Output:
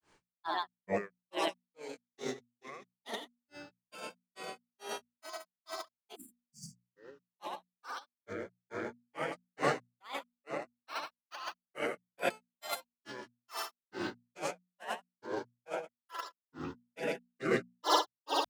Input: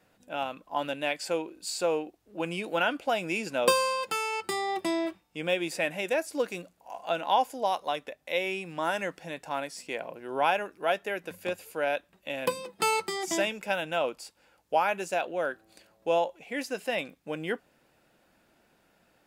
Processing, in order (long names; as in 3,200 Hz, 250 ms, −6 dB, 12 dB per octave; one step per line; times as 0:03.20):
wrong playback speed 24 fps film run at 25 fps
noise reduction from a noise print of the clip's start 18 dB
on a send: echo that builds up and dies away 113 ms, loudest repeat 5, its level −8 dB
on the sum: compressor whose output falls as the input rises −36 dBFS, ratio −0.5
time-frequency box erased 0:06.14–0:06.87, 280–5,800 Hz
granular cloud 240 ms, grains 2.3 per second, spray 11 ms, pitch spread up and down by 12 semitones
mains-hum notches 60/120/180/240 Hz
one half of a high-frequency compander encoder only
level +4 dB